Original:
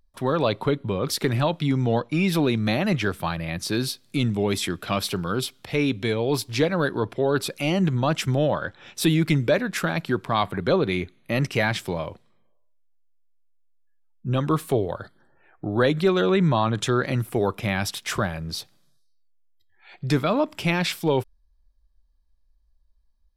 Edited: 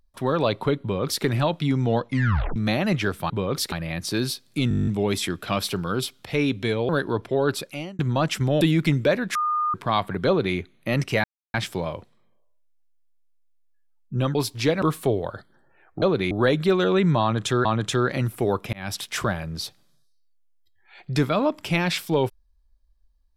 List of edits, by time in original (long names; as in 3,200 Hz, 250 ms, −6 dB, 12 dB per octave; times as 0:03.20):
0:00.82–0:01.24: duplicate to 0:03.30
0:02.08: tape stop 0.48 s
0:04.27: stutter 0.02 s, 10 plays
0:06.29–0:06.76: move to 0:14.48
0:07.36–0:07.86: fade out
0:08.48–0:09.04: remove
0:09.78–0:10.17: beep over 1,220 Hz −20.5 dBFS
0:10.70–0:10.99: duplicate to 0:15.68
0:11.67: splice in silence 0.30 s
0:16.59–0:17.02: repeat, 2 plays
0:17.67–0:17.92: fade in